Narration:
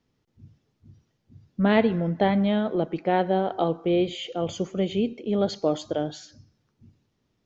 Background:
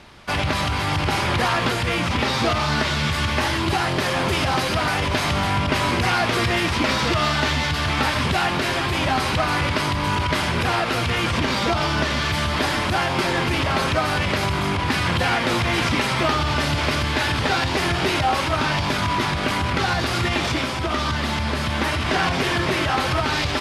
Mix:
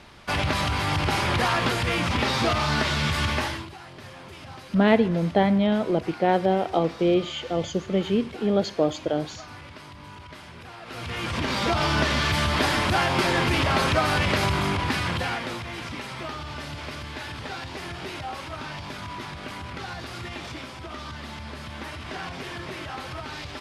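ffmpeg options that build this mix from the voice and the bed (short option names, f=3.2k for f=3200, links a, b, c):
-filter_complex "[0:a]adelay=3150,volume=1.5dB[a];[1:a]volume=18dB,afade=t=out:st=3.3:d=0.39:silence=0.112202,afade=t=in:st=10.8:d=1.13:silence=0.0944061,afade=t=out:st=14.47:d=1.17:silence=0.223872[b];[a][b]amix=inputs=2:normalize=0"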